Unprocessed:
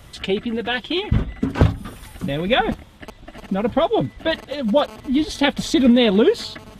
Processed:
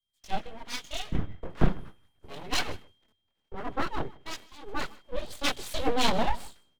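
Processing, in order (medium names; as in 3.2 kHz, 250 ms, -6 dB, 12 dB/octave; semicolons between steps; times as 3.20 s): gate -31 dBFS, range -8 dB; chorus voices 4, 0.39 Hz, delay 22 ms, depth 2.1 ms; full-wave rectifier; whistle 3.2 kHz -53 dBFS; on a send: delay 156 ms -18.5 dB; on the sum: three bands expanded up and down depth 100%; trim -7 dB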